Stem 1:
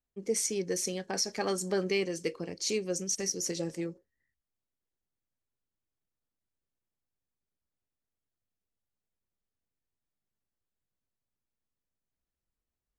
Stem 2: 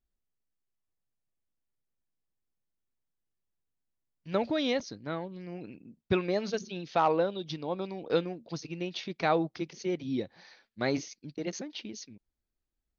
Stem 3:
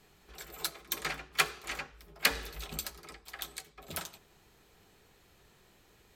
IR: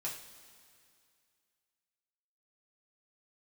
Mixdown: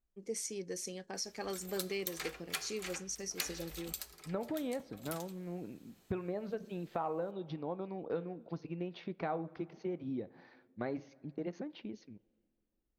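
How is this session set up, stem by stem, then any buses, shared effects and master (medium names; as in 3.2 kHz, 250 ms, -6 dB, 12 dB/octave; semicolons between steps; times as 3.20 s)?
-9.0 dB, 0.00 s, no bus, no send, none
-2.0 dB, 0.00 s, bus A, send -17.5 dB, low-pass 1.3 kHz 12 dB/octave
-10.0 dB, 1.15 s, bus A, send -11.5 dB, none
bus A: 0.0 dB, treble shelf 3.5 kHz +9.5 dB; compression, threshold -36 dBFS, peak gain reduction 12.5 dB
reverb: on, pre-delay 3 ms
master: none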